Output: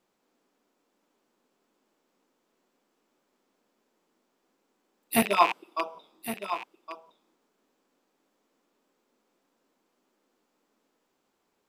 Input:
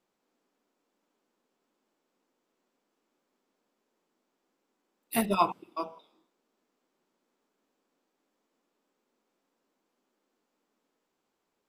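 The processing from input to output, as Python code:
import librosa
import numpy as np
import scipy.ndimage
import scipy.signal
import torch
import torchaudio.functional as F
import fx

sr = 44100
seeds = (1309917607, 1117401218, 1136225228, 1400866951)

y = fx.rattle_buzz(x, sr, strikes_db=-44.0, level_db=-22.0)
y = fx.highpass(y, sr, hz=430.0, slope=12, at=(5.22, 5.95))
y = y + 10.0 ** (-11.0 / 20.0) * np.pad(y, (int(1114 * sr / 1000.0), 0))[:len(y)]
y = y * 10.0 ** (4.5 / 20.0)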